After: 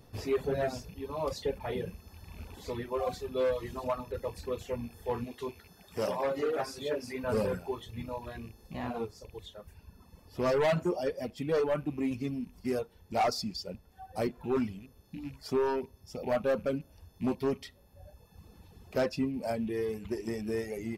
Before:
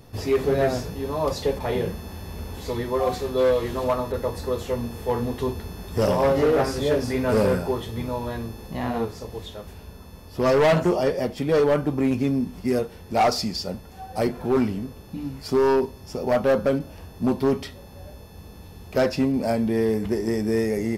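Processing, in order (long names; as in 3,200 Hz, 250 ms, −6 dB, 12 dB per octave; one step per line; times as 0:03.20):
loose part that buzzes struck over −32 dBFS, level −34 dBFS
reverb reduction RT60 1.6 s
0:05.24–0:07.24: high-pass filter 310 Hz 6 dB per octave
level −8 dB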